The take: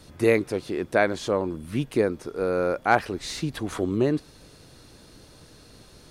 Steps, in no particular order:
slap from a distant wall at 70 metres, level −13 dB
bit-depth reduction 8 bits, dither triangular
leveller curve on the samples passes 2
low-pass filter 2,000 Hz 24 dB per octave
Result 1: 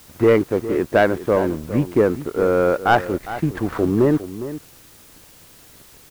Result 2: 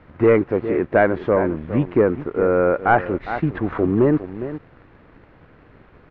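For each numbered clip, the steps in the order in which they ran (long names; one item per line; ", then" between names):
low-pass filter, then leveller curve on the samples, then slap from a distant wall, then bit-depth reduction
slap from a distant wall, then bit-depth reduction, then leveller curve on the samples, then low-pass filter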